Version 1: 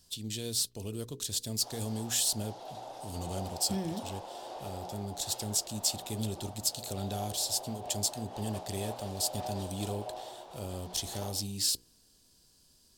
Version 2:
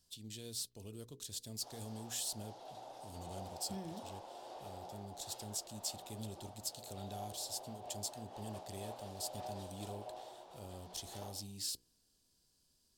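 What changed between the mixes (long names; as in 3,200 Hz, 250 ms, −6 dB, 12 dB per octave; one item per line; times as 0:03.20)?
speech −11.0 dB
background −7.0 dB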